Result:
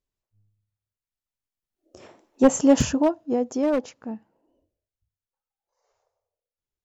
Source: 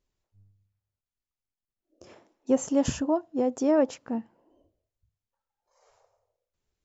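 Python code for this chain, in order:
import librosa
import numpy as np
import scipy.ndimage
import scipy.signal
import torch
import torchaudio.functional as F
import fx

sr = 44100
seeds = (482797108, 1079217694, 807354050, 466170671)

y = np.minimum(x, 2.0 * 10.0 ** (-19.0 / 20.0) - x)
y = fx.doppler_pass(y, sr, speed_mps=12, closest_m=5.5, pass_at_s=2.58)
y = F.gain(torch.from_numpy(y), 8.0).numpy()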